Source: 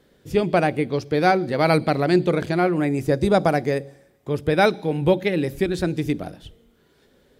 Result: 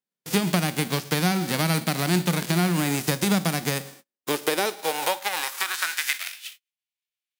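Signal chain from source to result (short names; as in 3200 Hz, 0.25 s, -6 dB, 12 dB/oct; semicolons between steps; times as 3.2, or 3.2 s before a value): spectral whitening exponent 0.3; gate -45 dBFS, range -37 dB; compressor, threshold -23 dBFS, peak gain reduction 11.5 dB; high-pass sweep 180 Hz -> 2500 Hz, 3.78–6.43; gain +1 dB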